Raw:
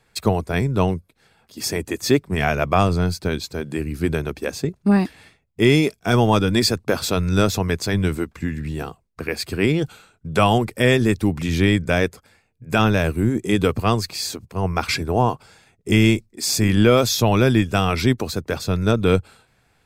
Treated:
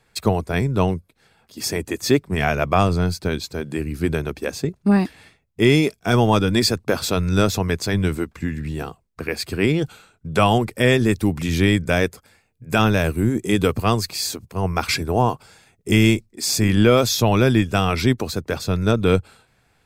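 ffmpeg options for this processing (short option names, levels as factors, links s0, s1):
-filter_complex "[0:a]asettb=1/sr,asplit=3[s0][s1][s2];[s0]atrim=end=11.114[s3];[s1]atrim=start=11.11:end=16.15,asetpts=PTS-STARTPTS,afade=t=in:d=0.004:c=qsin,afade=t=out:st=5.036:d=0.004:c=qsin,highshelf=f=7800:g=5.5[s4];[s2]atrim=start=16.146[s5];[s3][s4]acrossfade=d=0.004:c1=hsin:c2=qsin[s6];[s6][s5]acrossfade=d=0.004:c1=qsin:c2=hsin"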